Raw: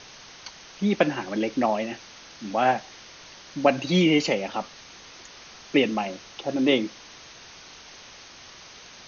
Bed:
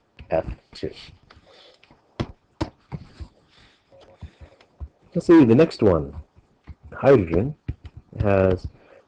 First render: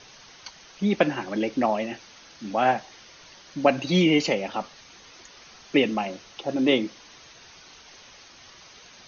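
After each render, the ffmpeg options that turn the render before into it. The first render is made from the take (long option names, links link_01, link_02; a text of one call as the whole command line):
ffmpeg -i in.wav -af "afftdn=noise_reduction=6:noise_floor=-47" out.wav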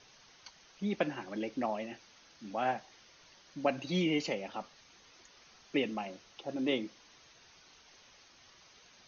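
ffmpeg -i in.wav -af "volume=-11dB" out.wav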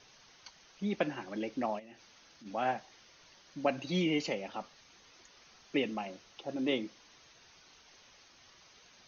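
ffmpeg -i in.wav -filter_complex "[0:a]asplit=3[link_01][link_02][link_03];[link_01]afade=type=out:start_time=1.78:duration=0.02[link_04];[link_02]acompressor=threshold=-51dB:ratio=4:attack=3.2:release=140:knee=1:detection=peak,afade=type=in:start_time=1.78:duration=0.02,afade=type=out:start_time=2.45:duration=0.02[link_05];[link_03]afade=type=in:start_time=2.45:duration=0.02[link_06];[link_04][link_05][link_06]amix=inputs=3:normalize=0" out.wav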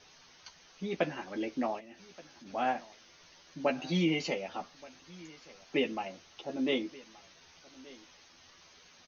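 ffmpeg -i in.wav -filter_complex "[0:a]asplit=2[link_01][link_02];[link_02]adelay=12,volume=-4dB[link_03];[link_01][link_03]amix=inputs=2:normalize=0,aecho=1:1:1176:0.0841" out.wav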